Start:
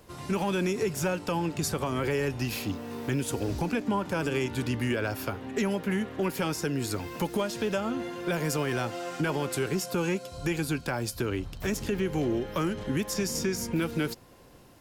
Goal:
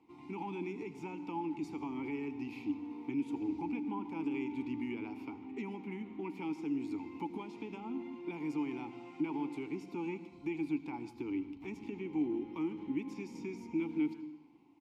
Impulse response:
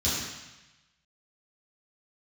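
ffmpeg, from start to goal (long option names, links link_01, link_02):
-filter_complex "[0:a]asplit=3[link_01][link_02][link_03];[link_01]bandpass=frequency=300:width_type=q:width=8,volume=0dB[link_04];[link_02]bandpass=frequency=870:width_type=q:width=8,volume=-6dB[link_05];[link_03]bandpass=frequency=2240:width_type=q:width=8,volume=-9dB[link_06];[link_04][link_05][link_06]amix=inputs=3:normalize=0,asplit=2[link_07][link_08];[link_08]adelay=150,highpass=300,lowpass=3400,asoftclip=type=hard:threshold=-34dB,volume=-18dB[link_09];[link_07][link_09]amix=inputs=2:normalize=0,asplit=2[link_10][link_11];[1:a]atrim=start_sample=2205,adelay=77[link_12];[link_11][link_12]afir=irnorm=-1:irlink=0,volume=-25.5dB[link_13];[link_10][link_13]amix=inputs=2:normalize=0,volume=1dB"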